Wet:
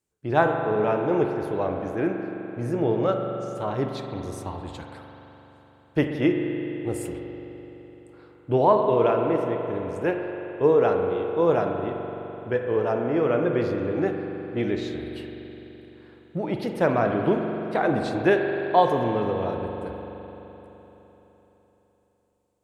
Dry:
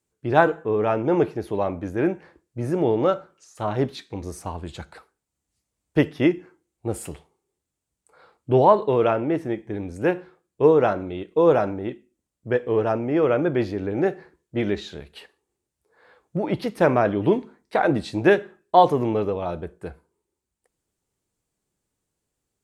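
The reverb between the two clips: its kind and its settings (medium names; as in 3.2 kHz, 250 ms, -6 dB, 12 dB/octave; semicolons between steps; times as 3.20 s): spring tank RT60 3.9 s, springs 42 ms, chirp 30 ms, DRR 3 dB; trim -3.5 dB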